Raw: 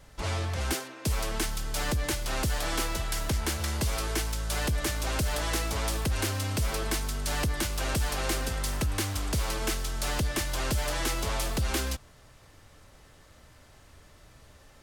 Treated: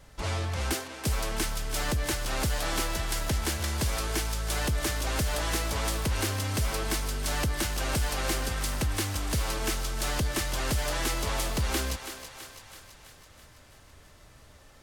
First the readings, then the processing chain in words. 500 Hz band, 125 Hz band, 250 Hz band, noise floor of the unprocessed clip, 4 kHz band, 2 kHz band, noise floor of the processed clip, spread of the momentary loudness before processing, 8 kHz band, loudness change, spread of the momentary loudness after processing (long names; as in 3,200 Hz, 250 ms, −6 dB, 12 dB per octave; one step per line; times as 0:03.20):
+0.5 dB, 0.0 dB, 0.0 dB, −56 dBFS, +1.0 dB, +0.5 dB, −54 dBFS, 2 LU, +1.0 dB, +0.5 dB, 3 LU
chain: feedback echo with a high-pass in the loop 330 ms, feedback 61%, level −9 dB